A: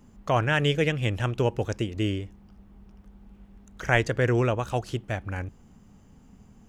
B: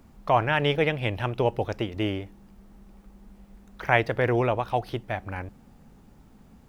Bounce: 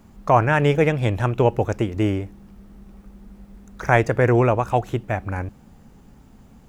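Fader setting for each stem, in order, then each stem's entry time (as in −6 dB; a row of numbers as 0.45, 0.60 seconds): −1.0, +3.0 decibels; 0.00, 0.00 seconds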